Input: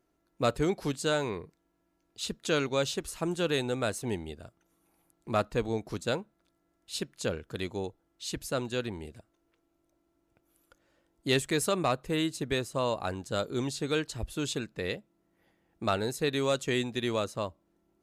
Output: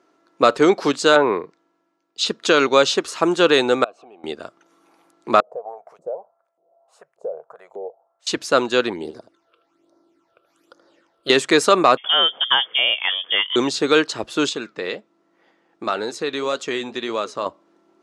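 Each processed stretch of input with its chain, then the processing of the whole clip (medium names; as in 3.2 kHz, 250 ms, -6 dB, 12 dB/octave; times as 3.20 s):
1.15–2.26 s: low-pass that closes with the level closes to 1.5 kHz, closed at -27.5 dBFS + three bands expanded up and down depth 40%
3.84–4.24 s: bass shelf 480 Hz +11.5 dB + compression 12:1, threshold -34 dBFS + vowel filter a
5.40–8.27 s: FFT filter 100 Hz 0 dB, 150 Hz +7 dB, 280 Hz -21 dB, 440 Hz +2 dB, 690 Hz +12 dB, 1 kHz -3 dB, 1.8 kHz -17 dB, 3.8 kHz -25 dB, 8 kHz +2 dB, 13 kHz +12 dB + compression, threshold -37 dBFS + LFO band-pass saw up 1.7 Hz 320–2800 Hz
8.93–11.30 s: phase shifter stages 8, 1.2 Hz, lowest notch 250–2800 Hz + delay 78 ms -13 dB
11.97–13.56 s: frequency inversion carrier 3.4 kHz + dynamic bell 2.6 kHz, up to -7 dB, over -43 dBFS, Q 3.4
14.49–17.46 s: low-pass 11 kHz + compression 2:1, threshold -33 dBFS + flange 1.9 Hz, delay 3.4 ms, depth 3.6 ms, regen -78%
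whole clip: Chebyshev band-pass 330–5500 Hz, order 2; peaking EQ 1.2 kHz +6.5 dB 0.74 oct; loudness maximiser +15.5 dB; trim -1 dB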